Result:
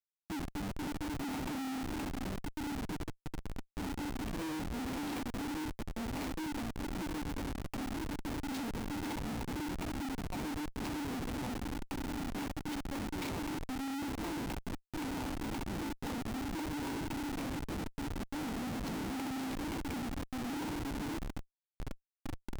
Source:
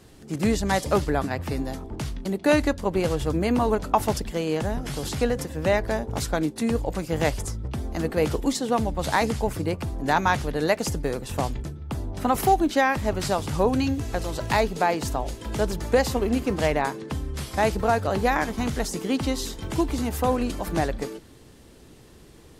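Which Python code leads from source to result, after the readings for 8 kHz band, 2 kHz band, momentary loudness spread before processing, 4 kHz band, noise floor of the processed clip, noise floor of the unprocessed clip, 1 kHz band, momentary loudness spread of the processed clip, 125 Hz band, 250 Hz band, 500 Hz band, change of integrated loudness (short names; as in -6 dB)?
-13.0 dB, -14.5 dB, 9 LU, -11.5 dB, -83 dBFS, -49 dBFS, -17.0 dB, 4 LU, -13.5 dB, -10.0 dB, -21.0 dB, -14.0 dB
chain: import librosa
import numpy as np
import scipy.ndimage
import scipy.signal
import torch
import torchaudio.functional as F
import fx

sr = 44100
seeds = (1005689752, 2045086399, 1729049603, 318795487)

p1 = fx.dmg_wind(x, sr, seeds[0], corner_hz=110.0, level_db=-32.0)
p2 = fx.over_compress(p1, sr, threshold_db=-28.0, ratio=-0.5)
p3 = fx.vowel_filter(p2, sr, vowel='u')
p4 = fx.peak_eq(p3, sr, hz=4700.0, db=10.5, octaves=2.2)
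p5 = p4 + 0.49 * np.pad(p4, (int(4.2 * sr / 1000.0), 0))[:len(p4)]
p6 = p5 + fx.echo_thinned(p5, sr, ms=65, feedback_pct=33, hz=480.0, wet_db=-5.5, dry=0)
p7 = fx.schmitt(p6, sr, flips_db=-41.0)
y = p7 * librosa.db_to_amplitude(2.0)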